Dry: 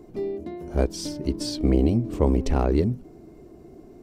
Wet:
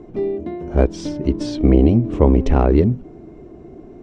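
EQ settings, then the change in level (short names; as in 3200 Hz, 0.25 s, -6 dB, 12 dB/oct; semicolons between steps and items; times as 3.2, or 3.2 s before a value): air absorption 140 m; bell 4600 Hz -8 dB 0.31 oct; +7.5 dB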